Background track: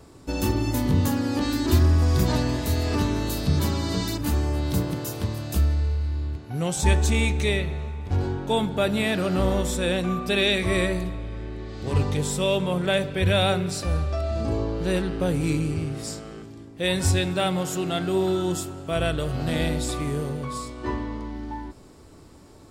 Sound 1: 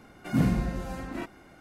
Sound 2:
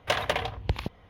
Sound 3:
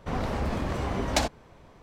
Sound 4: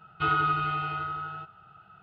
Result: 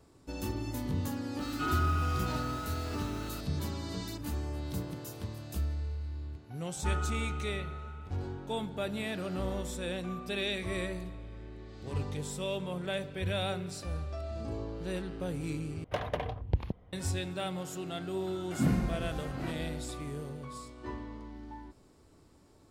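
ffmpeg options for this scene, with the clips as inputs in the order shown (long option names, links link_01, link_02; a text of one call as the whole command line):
ffmpeg -i bed.wav -i cue0.wav -i cue1.wav -i cue2.wav -i cue3.wav -filter_complex "[4:a]asplit=2[link_01][link_02];[0:a]volume=-12dB[link_03];[link_01]aeval=exprs='val(0)+0.5*0.0224*sgn(val(0))':channel_layout=same[link_04];[2:a]tiltshelf=frequency=970:gain=8[link_05];[link_03]asplit=2[link_06][link_07];[link_06]atrim=end=15.844[link_08];[link_05]atrim=end=1.09,asetpts=PTS-STARTPTS,volume=-8.5dB[link_09];[link_07]atrim=start=16.926[link_10];[link_04]atrim=end=2.02,asetpts=PTS-STARTPTS,volume=-10dB,afade=type=in:duration=0.004:curve=hsin,afade=type=out:start_time=2.016:duration=0.004:curve=hsin,adelay=1390[link_11];[link_02]atrim=end=2.02,asetpts=PTS-STARTPTS,volume=-15.5dB,afade=type=in:duration=0.004:curve=hsin,afade=type=out:start_time=2.016:duration=0.004:curve=hsin,adelay=6640[link_12];[1:a]atrim=end=1.6,asetpts=PTS-STARTPTS,volume=-4dB,afade=type=in:duration=0.004:curve=hsin,afade=type=out:start_time=1.596:duration=0.004:curve=hsin,adelay=18260[link_13];[link_08][link_09]acrossfade=duration=0.004:curve1=hsin:curve2=hsin[link_14];[link_14][link_10]acrossfade=duration=0.004:curve1=hsin:curve2=hsin[link_15];[link_15][link_11][link_12][link_13]amix=inputs=4:normalize=0" out.wav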